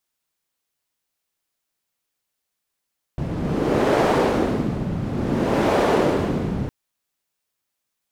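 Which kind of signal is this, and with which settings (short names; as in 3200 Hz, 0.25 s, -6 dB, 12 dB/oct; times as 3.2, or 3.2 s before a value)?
wind-like swept noise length 3.51 s, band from 160 Hz, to 520 Hz, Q 1.1, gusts 2, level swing 7.5 dB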